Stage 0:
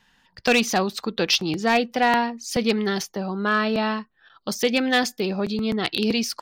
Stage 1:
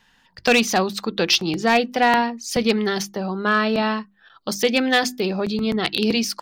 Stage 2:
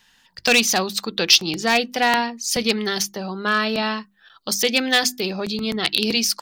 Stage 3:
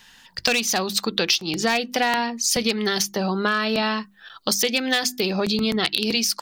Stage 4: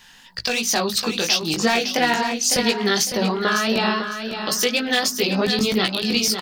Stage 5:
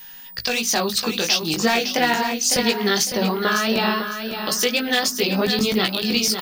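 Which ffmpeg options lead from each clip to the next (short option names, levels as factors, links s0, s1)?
-af "bandreject=f=50:t=h:w=6,bandreject=f=100:t=h:w=6,bandreject=f=150:t=h:w=6,bandreject=f=200:t=h:w=6,bandreject=f=250:t=h:w=6,bandreject=f=300:t=h:w=6,bandreject=f=350:t=h:w=6,volume=1.33"
-af "highshelf=f=2600:g=11.5,volume=0.668"
-af "acompressor=threshold=0.0501:ratio=6,volume=2.24"
-af "alimiter=limit=0.355:level=0:latency=1:release=214,flanger=delay=16:depth=4.3:speed=2.9,aecho=1:1:555|1110|1665:0.398|0.0995|0.0249,volume=1.78"
-af "aeval=exprs='val(0)+0.0126*sin(2*PI*15000*n/s)':c=same"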